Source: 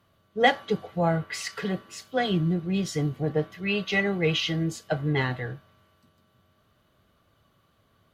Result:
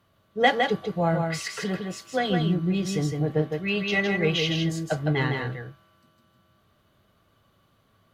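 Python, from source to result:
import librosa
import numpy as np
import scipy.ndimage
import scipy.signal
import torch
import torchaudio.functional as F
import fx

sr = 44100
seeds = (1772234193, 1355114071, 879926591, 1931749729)

y = x + 10.0 ** (-4.5 / 20.0) * np.pad(x, (int(160 * sr / 1000.0), 0))[:len(x)]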